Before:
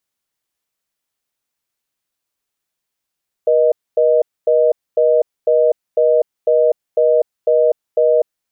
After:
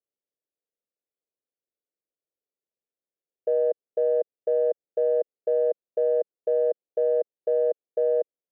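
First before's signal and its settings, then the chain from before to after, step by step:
call progress tone reorder tone, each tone -12.5 dBFS 4.93 s
Wiener smoothing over 41 samples; limiter -15 dBFS; band-pass 490 Hz, Q 2.3

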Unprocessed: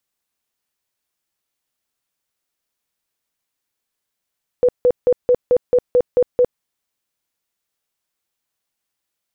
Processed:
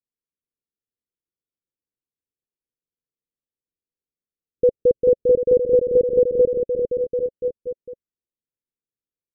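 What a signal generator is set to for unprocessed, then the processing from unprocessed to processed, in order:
tone bursts 494 Hz, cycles 28, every 0.22 s, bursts 9, -9.5 dBFS
spectral noise reduction 10 dB; steep low-pass 540 Hz 96 dB/oct; on a send: bouncing-ball echo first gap 0.4 s, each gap 0.85×, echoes 5

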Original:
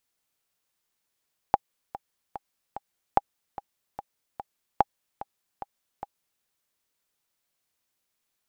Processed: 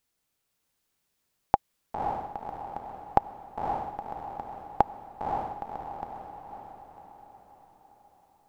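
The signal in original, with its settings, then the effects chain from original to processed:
metronome 147 bpm, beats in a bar 4, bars 3, 809 Hz, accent 16.5 dB -5 dBFS
low shelf 350 Hz +6 dB; on a send: diffused feedback echo 0.547 s, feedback 49%, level -3 dB

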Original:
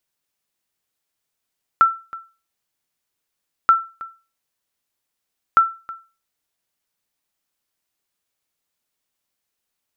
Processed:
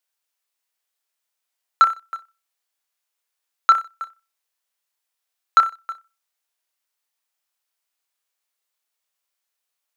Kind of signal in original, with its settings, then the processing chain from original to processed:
sonar ping 1340 Hz, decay 0.32 s, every 1.88 s, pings 3, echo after 0.32 s, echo -20 dB -5 dBFS
HPF 610 Hz 12 dB/oct; flutter echo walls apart 5.3 m, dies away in 0.28 s; sample leveller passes 1

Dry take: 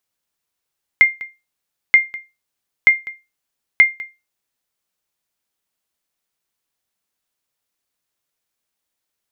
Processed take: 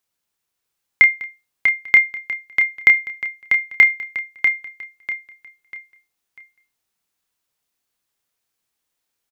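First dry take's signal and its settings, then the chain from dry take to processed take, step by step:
sonar ping 2110 Hz, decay 0.24 s, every 0.93 s, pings 4, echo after 0.20 s, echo -20 dB -1.5 dBFS
notch 600 Hz, Q 15; doubler 29 ms -8 dB; on a send: feedback echo 0.644 s, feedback 34%, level -5.5 dB

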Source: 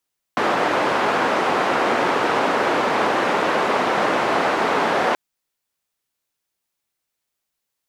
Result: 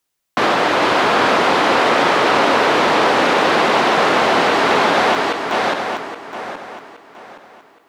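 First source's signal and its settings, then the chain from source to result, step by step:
noise band 290–1100 Hz, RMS -19.5 dBFS 4.78 s
regenerating reverse delay 0.41 s, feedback 55%, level -4 dB; dynamic EQ 3900 Hz, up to +5 dB, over -38 dBFS, Q 1.2; in parallel at -2 dB: limiter -14.5 dBFS

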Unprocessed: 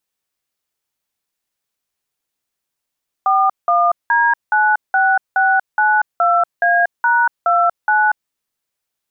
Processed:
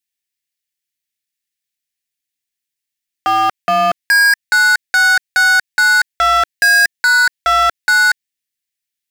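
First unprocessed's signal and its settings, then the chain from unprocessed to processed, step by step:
DTMF "41D96692A#29", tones 0.237 s, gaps 0.183 s, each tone -13.5 dBFS
EQ curve 320 Hz 0 dB, 1100 Hz -18 dB, 1800 Hz +8 dB; sample leveller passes 5

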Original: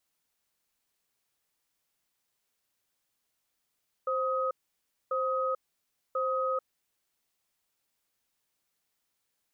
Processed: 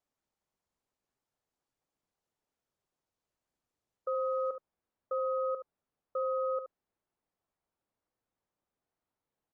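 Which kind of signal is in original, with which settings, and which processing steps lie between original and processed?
cadence 524 Hz, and 1260 Hz, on 0.44 s, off 0.60 s, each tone -29.5 dBFS 2.70 s
LPF 1000 Hz 12 dB/oct; on a send: echo 72 ms -10 dB; on the sum: Opus 32 kbps 48000 Hz

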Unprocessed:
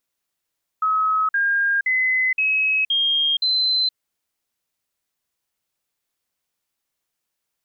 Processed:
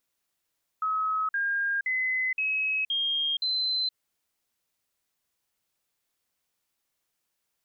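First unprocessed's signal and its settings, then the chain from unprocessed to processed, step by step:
stepped sine 1280 Hz up, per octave 3, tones 6, 0.47 s, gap 0.05 s -16.5 dBFS
limiter -24.5 dBFS

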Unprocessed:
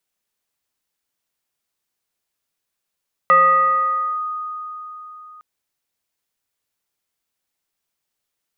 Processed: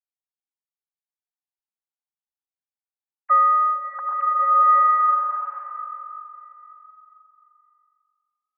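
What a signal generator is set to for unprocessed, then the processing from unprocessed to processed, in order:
FM tone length 2.11 s, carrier 1240 Hz, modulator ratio 0.57, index 0.61, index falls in 0.91 s linear, decay 4.01 s, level -8 dB
sine-wave speech; LPF 1200 Hz 12 dB/oct; bloom reverb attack 1.36 s, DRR -3.5 dB

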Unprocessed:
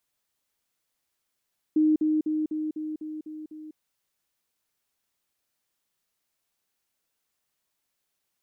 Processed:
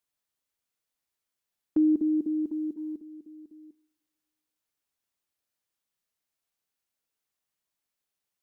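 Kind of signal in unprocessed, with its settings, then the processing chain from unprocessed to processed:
level ladder 309 Hz -17.5 dBFS, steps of -3 dB, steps 8, 0.20 s 0.05 s
gate -34 dBFS, range -7 dB; two-slope reverb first 0.49 s, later 2 s, from -20 dB, DRR 15.5 dB

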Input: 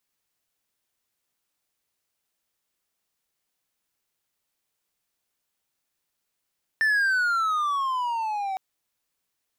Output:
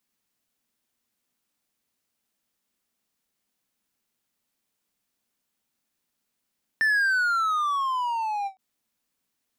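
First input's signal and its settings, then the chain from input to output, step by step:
gliding synth tone triangle, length 1.76 s, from 1790 Hz, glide -15 st, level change -8 dB, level -16.5 dB
bell 230 Hz +10.5 dB 0.63 oct; ending taper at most 380 dB/s

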